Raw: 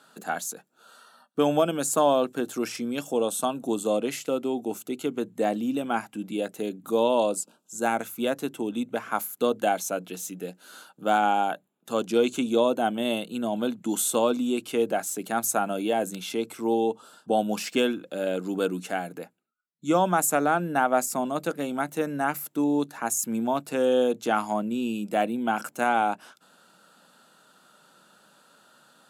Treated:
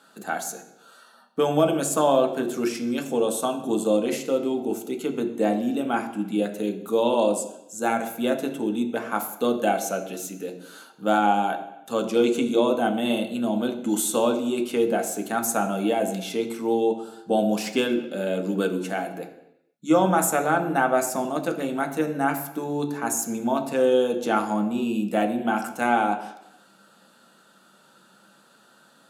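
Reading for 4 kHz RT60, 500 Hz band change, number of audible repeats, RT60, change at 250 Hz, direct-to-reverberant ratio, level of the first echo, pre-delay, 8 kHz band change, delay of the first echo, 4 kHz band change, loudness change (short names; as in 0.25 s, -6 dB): 0.85 s, +2.5 dB, none, 0.80 s, +3.0 dB, 3.0 dB, none, 3 ms, +0.5 dB, none, +1.0 dB, +2.0 dB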